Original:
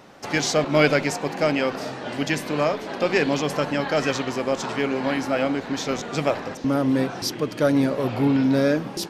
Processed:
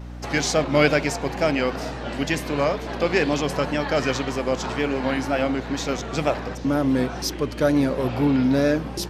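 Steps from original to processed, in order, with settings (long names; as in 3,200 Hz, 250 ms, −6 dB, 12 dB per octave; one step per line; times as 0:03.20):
tape wow and flutter 69 cents
mains hum 60 Hz, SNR 13 dB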